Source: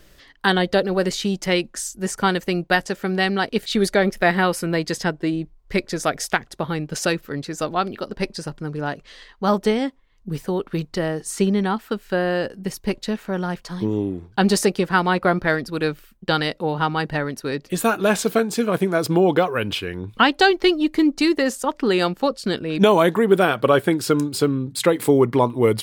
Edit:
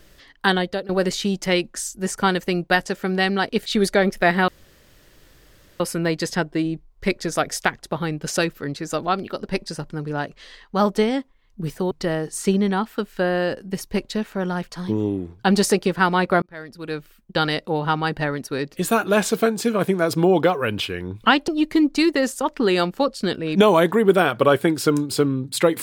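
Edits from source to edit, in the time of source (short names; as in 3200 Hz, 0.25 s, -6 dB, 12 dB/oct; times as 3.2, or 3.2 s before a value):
0.48–0.89 fade out, to -17 dB
4.48 insert room tone 1.32 s
10.59–10.84 cut
15.35–16.4 fade in
20.41–20.71 cut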